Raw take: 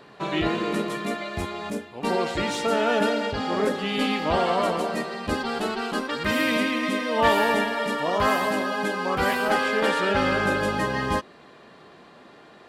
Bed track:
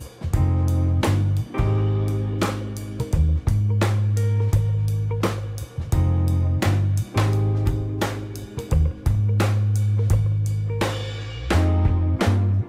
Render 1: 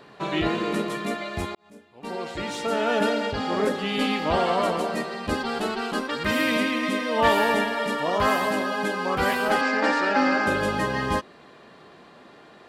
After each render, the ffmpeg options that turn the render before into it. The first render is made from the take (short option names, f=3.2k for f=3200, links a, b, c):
-filter_complex "[0:a]asettb=1/sr,asplit=3[a][b][c];[a]atrim=end=9.614[d];[b]atrim=start=9.61:end=10.47,asetpts=PTS-STARTPTS,afade=t=in:d=0.004:c=qsin,afade=t=out:st=0.856:d=0.004:c=qsin,highpass=f=240:w=0.5412,highpass=f=240:w=1.3066,equalizer=f=280:t=q:w=4:g=10,equalizer=f=410:t=q:w=4:g=-9,equalizer=f=790:t=q:w=4:g=5,equalizer=f=1.8k:t=q:w=4:g=3,equalizer=f=3.3k:t=q:w=4:g=-9,equalizer=f=5k:t=q:w=4:g=5,lowpass=f=7.3k:w=0.5412,lowpass=f=7.3k:w=1.3066[e];[c]atrim=start=10.466[f];[d][e]acrossfade=d=0.004:c1=hsin:c2=qsin[g];[g][f]acrossfade=d=0.004:c1=qsin:c2=hsin,asplit=2[h][i];[h]atrim=end=1.55,asetpts=PTS-STARTPTS,afade=t=out:st=1.546:d=0.004:c=hsin[j];[i]atrim=start=1.55,asetpts=PTS-STARTPTS,afade=t=in:d=1.53[k];[j][k]concat=n=2:v=0:a=1"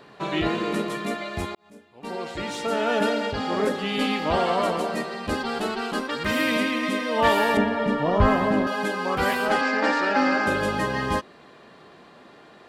-filter_complex "[0:a]asettb=1/sr,asplit=3[a][b][c];[a]atrim=end=5.154[d];[b]atrim=start=5.15:end=6.37,asetpts=PTS-STARTPTS,afade=t=in:d=0.004:c=qsin,afade=t=out:st=1.216:d=0.004:c=qsin,asoftclip=type=hard:threshold=-18dB[e];[c]atrim=start=6.366[f];[d][e]acrossfade=d=0.004:c1=hsin:c2=qsin[g];[g][f]acrossfade=d=0.004:c1=qsin:c2=hsin,asettb=1/sr,asplit=3[h][i][j];[h]atrim=end=7.574[k];[i]atrim=start=7.57:end=8.67,asetpts=PTS-STARTPTS,afade=t=in:d=0.004:c=qsin,afade=t=out:st=1.096:d=0.004:c=qsin,aemphasis=mode=reproduction:type=riaa[l];[j]atrim=start=8.666[m];[k][l]acrossfade=d=0.004:c1=hsin:c2=qsin[n];[n][m]acrossfade=d=0.004:c1=qsin:c2=hsin,asettb=1/sr,asplit=3[o][p][q];[o]atrim=end=9.464[r];[p]atrim=start=9.46:end=10.16,asetpts=PTS-STARTPTS,afade=t=in:d=0.004:c=qsin,afade=t=out:st=0.696:d=0.004:c=qsin,lowpass=8.9k[s];[q]atrim=start=10.156[t];[r][s]acrossfade=d=0.004:c1=hsin:c2=qsin[u];[u][t]acrossfade=d=0.004:c1=qsin:c2=hsin"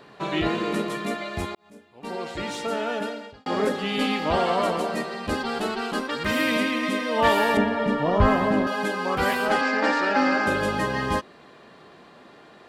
-filter_complex "[0:a]asplit=2[a][b];[a]atrim=end=3.46,asetpts=PTS-STARTPTS,afade=t=out:st=2.51:d=0.95[c];[b]atrim=start=3.46,asetpts=PTS-STARTPTS,afade=t=in:d=0.004:c=hsin[d];[c][d]concat=n=2:v=0:a=1"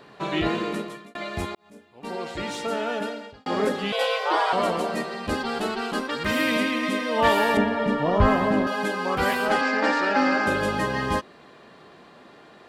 -filter_complex "[0:a]asettb=1/sr,asplit=3[a][b][c];[a]atrim=end=3.924[d];[b]atrim=start=3.92:end=4.53,asetpts=PTS-STARTPTS,afade=t=in:d=0.004:c=qsin,afade=t=out:st=0.606:d=0.004:c=qsin,afreqshift=260[e];[c]atrim=start=4.526[f];[d][e]acrossfade=d=0.004:c1=hsin:c2=qsin[g];[g][f]acrossfade=d=0.004:c1=qsin:c2=hsin,asplit=2[h][i];[h]atrim=end=1.15,asetpts=PTS-STARTPTS,afade=t=out:st=0.57:d=0.58[j];[i]atrim=start=1.15,asetpts=PTS-STARTPTS,afade=t=in:d=0.004:c=hsin[k];[j][k]concat=n=2:v=0:a=1"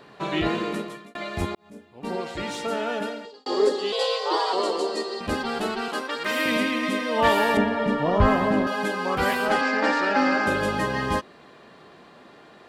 -filter_complex "[0:a]asettb=1/sr,asplit=3[a][b][c];[a]atrim=end=1.414[d];[b]atrim=start=1.41:end=2.21,asetpts=PTS-STARTPTS,afade=t=in:d=0.004:c=qsin,afade=t=out:st=0.796:d=0.004:c=qsin,lowshelf=f=420:g=6.5[e];[c]atrim=start=2.206[f];[d][e]acrossfade=d=0.004:c1=hsin:c2=qsin[g];[g][f]acrossfade=d=0.004:c1=qsin:c2=hsin,asettb=1/sr,asplit=3[h][i][j];[h]atrim=end=3.254[k];[i]atrim=start=3.25:end=5.21,asetpts=PTS-STARTPTS,afade=t=in:d=0.004:c=qsin,afade=t=out:st=1.956:d=0.004:c=qsin,highpass=f=300:w=0.5412,highpass=f=300:w=1.3066,equalizer=f=400:t=q:w=4:g=8,equalizer=f=660:t=q:w=4:g=-7,equalizer=f=1.5k:t=q:w=4:g=-9,equalizer=f=2.3k:t=q:w=4:g=-10,equalizer=f=4.5k:t=q:w=4:g=10,equalizer=f=7.3k:t=q:w=4:g=4,lowpass=f=9.8k:w=0.5412,lowpass=f=9.8k:w=1.3066[l];[j]atrim=start=5.206[m];[k][l]acrossfade=d=0.004:c1=hsin:c2=qsin[n];[n][m]acrossfade=d=0.004:c1=qsin:c2=hsin,asettb=1/sr,asplit=3[o][p][q];[o]atrim=end=5.884[r];[p]atrim=start=5.88:end=6.46,asetpts=PTS-STARTPTS,afade=t=in:d=0.004:c=qsin,afade=t=out:st=0.576:d=0.004:c=qsin,highpass=360[s];[q]atrim=start=6.456[t];[r][s]acrossfade=d=0.004:c1=hsin:c2=qsin[u];[u][t]acrossfade=d=0.004:c1=qsin:c2=hsin"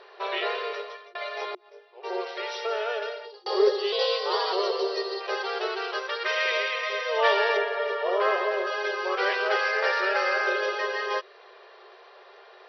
-af "afftfilt=real='re*between(b*sr/4096,360,5900)':imag='im*between(b*sr/4096,360,5900)':win_size=4096:overlap=0.75,adynamicequalizer=threshold=0.01:dfrequency=850:dqfactor=2.6:tfrequency=850:tqfactor=2.6:attack=5:release=100:ratio=0.375:range=4:mode=cutabove:tftype=bell"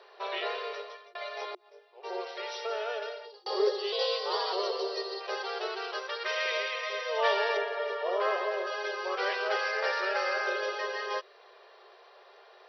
-af "highpass=490,equalizer=f=1.8k:t=o:w=2.7:g=-6"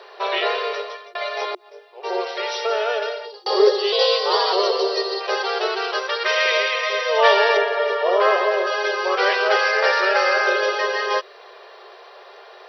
-af "volume=12dB"